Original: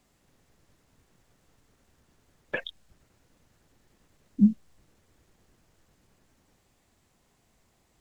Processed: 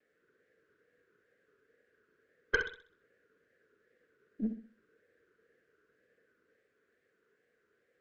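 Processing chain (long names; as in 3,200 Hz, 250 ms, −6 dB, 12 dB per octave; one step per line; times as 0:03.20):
pair of resonant band-passes 850 Hz, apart 1.8 octaves
harmonic generator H 4 −16 dB, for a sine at −21.5 dBFS
tape wow and flutter 120 cents
on a send: flutter between parallel walls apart 11 metres, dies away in 0.43 s
on the sum: level +6 dB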